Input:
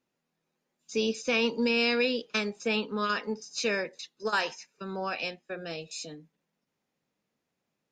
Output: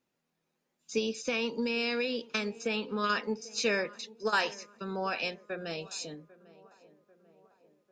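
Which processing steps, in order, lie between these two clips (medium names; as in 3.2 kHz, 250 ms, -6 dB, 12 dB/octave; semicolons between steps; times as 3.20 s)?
0.98–3.04 s: compression, threshold -28 dBFS, peak gain reduction 6 dB; tape echo 795 ms, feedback 63%, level -19 dB, low-pass 1.2 kHz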